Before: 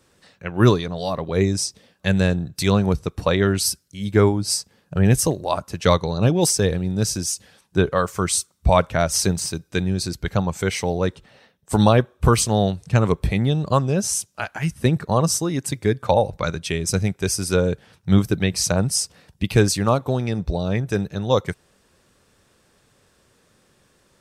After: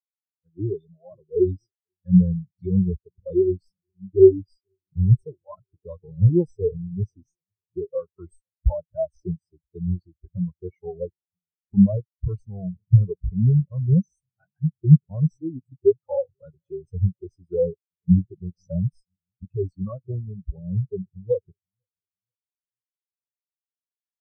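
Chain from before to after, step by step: tracing distortion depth 0.025 ms; formant-preserving pitch shift -1 st; feedback echo behind a low-pass 488 ms, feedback 73%, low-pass 460 Hz, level -19 dB; loudness maximiser +11 dB; spectral contrast expander 4:1; trim -1 dB

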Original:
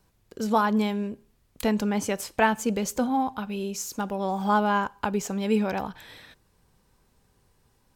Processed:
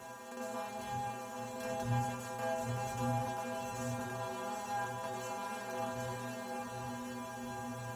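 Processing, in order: spectral levelling over time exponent 0.2; wind noise 110 Hz -24 dBFS; high-pass 57 Hz; inharmonic resonator 120 Hz, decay 0.69 s, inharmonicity 0.008; shuffle delay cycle 1045 ms, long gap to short 3:1, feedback 41%, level -5 dB; trim -9 dB

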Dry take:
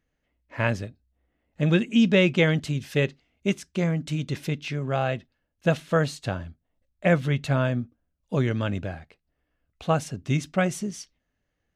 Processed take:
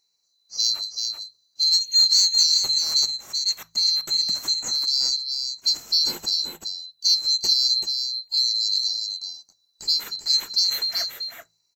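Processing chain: split-band scrambler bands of 4 kHz; peaking EQ 2.9 kHz -8 dB 2 oct; de-hum 55.28 Hz, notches 3; harmonic-percussive split harmonic +5 dB; bass shelf 250 Hz -6 dB; in parallel at +2 dB: compression, threshold -29 dBFS, peak gain reduction 12.5 dB; on the sum: saturation -6 dBFS, distortion -27 dB; delay 384 ms -5.5 dB

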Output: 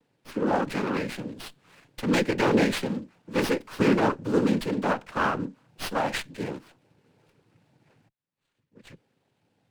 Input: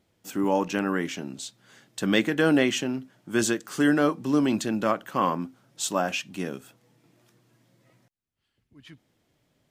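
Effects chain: noise-vocoded speech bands 8; sliding maximum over 5 samples

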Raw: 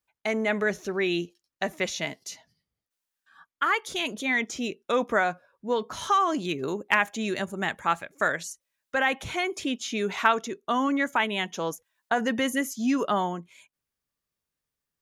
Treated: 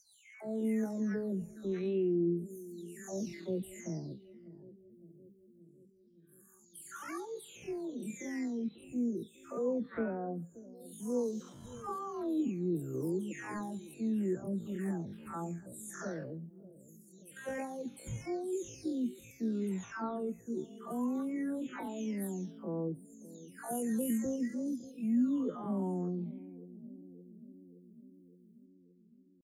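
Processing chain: delay that grows with frequency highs early, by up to 403 ms; FFT filter 120 Hz 0 dB, 330 Hz -2 dB, 770 Hz -17 dB, 3.3 kHz -26 dB, 9.3 kHz -4 dB; bucket-brigade echo 289 ms, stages 1024, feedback 67%, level -16.5 dB; tempo 0.51×

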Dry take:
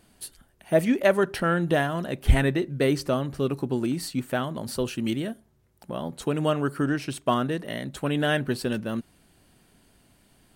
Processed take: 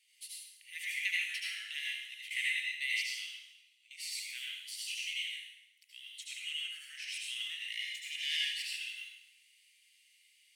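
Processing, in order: 7.72–8.56 s: comb filter that takes the minimum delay 1.7 ms; tilt EQ -4 dB/octave; 1.79–2.31 s: valve stage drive 9 dB, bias 0.65; 3.30–3.91 s: compression 6:1, threshold -36 dBFS, peak gain reduction 21.5 dB; rippled Chebyshev high-pass 2 kHz, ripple 3 dB; reverberation RT60 0.95 s, pre-delay 69 ms, DRR -4 dB; trim +4 dB

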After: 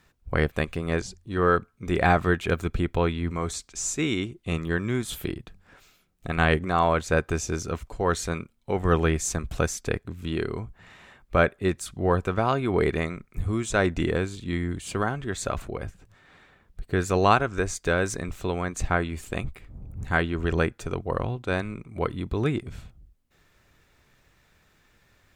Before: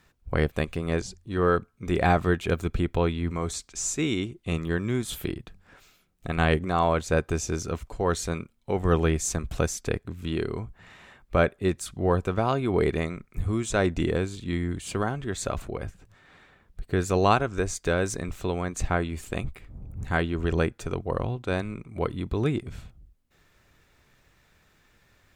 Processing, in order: dynamic bell 1.6 kHz, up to +4 dB, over -39 dBFS, Q 0.96

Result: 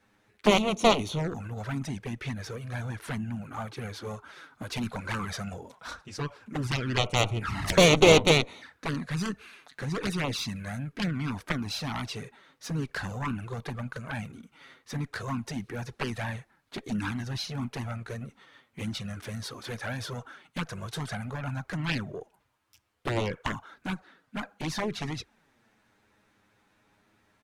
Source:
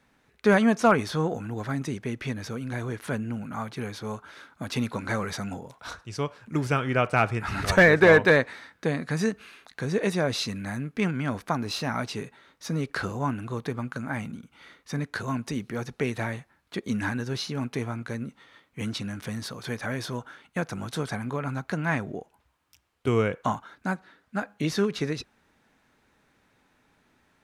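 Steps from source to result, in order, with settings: Chebyshev shaper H 2 -7 dB, 3 -19 dB, 5 -18 dB, 7 -9 dB, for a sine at -6 dBFS; harmony voices -3 st -16 dB; touch-sensitive flanger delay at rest 10.1 ms, full sweep at -23 dBFS

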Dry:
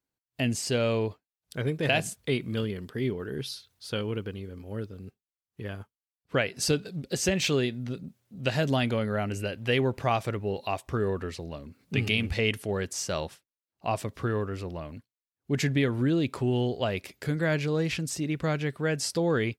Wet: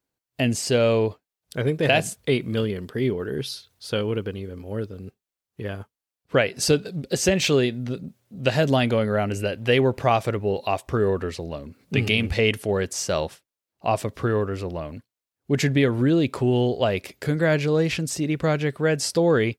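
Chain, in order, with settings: peaking EQ 530 Hz +3.5 dB 1.2 oct; trim +4.5 dB

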